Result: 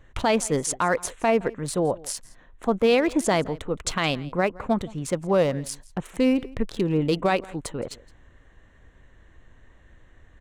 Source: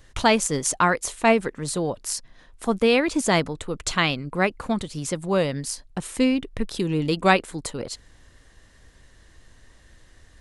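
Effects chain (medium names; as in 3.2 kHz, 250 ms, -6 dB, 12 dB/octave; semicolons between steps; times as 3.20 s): local Wiener filter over 9 samples; dynamic bell 620 Hz, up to +5 dB, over -33 dBFS, Q 1.2; peak limiter -12 dBFS, peak gain reduction 10 dB; on a send: delay 167 ms -22 dB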